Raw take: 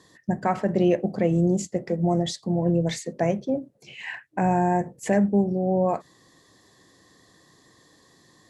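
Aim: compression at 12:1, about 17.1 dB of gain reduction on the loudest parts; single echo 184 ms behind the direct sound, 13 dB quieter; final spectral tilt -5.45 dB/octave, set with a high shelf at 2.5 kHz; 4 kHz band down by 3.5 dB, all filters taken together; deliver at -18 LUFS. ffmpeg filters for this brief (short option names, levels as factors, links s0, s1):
-af "highshelf=f=2500:g=3.5,equalizer=f=4000:t=o:g=-7.5,acompressor=threshold=0.02:ratio=12,aecho=1:1:184:0.224,volume=11.2"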